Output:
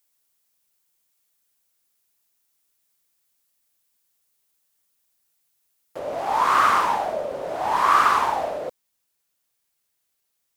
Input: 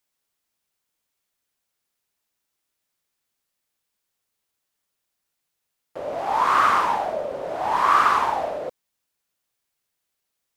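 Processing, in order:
high-shelf EQ 6,000 Hz +11 dB, from 0:05.99 +6 dB

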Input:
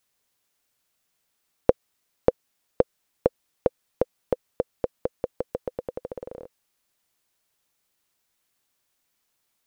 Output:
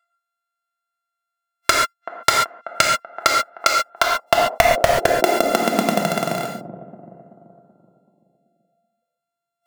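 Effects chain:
samples sorted by size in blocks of 64 samples
delay with a low-pass on its return 382 ms, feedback 47%, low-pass 530 Hz, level −10 dB
noise reduction from a noise print of the clip's start 26 dB
high-pass filter sweep 1,400 Hz → 150 Hz, 0:03.81–0:06.14
wave folding −11.5 dBFS
reverb whose tail is shaped and stops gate 160 ms flat, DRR 0.5 dB
boost into a limiter +13 dB
level −1 dB

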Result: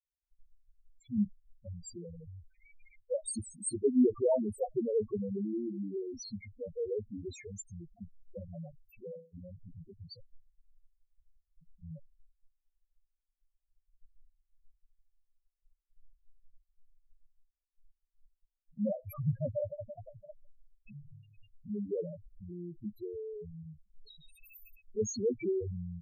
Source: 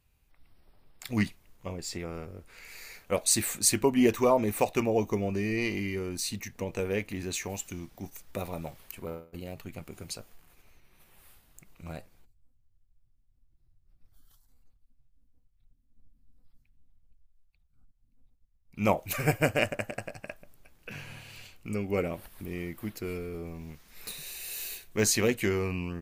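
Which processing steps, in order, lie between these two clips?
spectral peaks only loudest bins 2
downward expander −54 dBFS

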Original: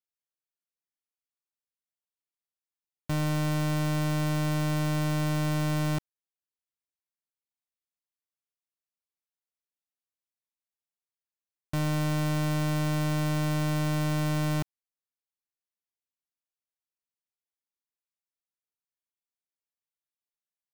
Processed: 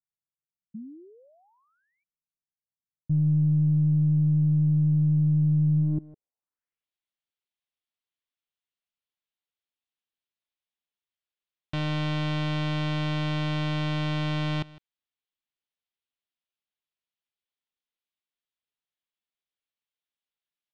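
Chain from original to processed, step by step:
single-tap delay 157 ms −20.5 dB
sound drawn into the spectrogram rise, 0:00.74–0:02.04, 210–2,400 Hz −35 dBFS
low-pass filter sweep 160 Hz → 3,400 Hz, 0:05.77–0:06.86
level −1 dB

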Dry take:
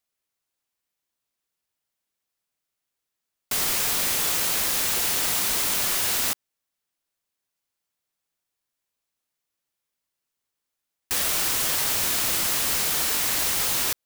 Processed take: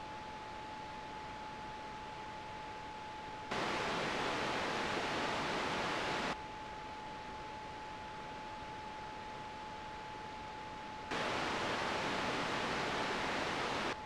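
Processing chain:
high-pass filter 220 Hz 12 dB per octave
frequency shifter −40 Hz
bit-depth reduction 6 bits, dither triangular
steady tone 860 Hz −43 dBFS
head-to-tape spacing loss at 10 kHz 39 dB

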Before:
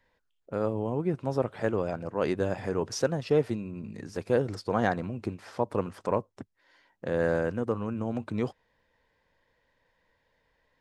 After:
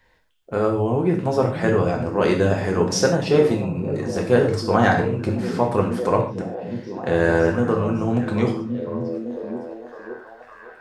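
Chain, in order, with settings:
parametric band 340 Hz −3 dB 2.6 octaves
on a send: echo through a band-pass that steps 559 ms, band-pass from 170 Hz, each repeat 0.7 octaves, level −4 dB
on the sum: reverb whose tail is shaped and stops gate 170 ms falling, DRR 0.5 dB
level +9 dB

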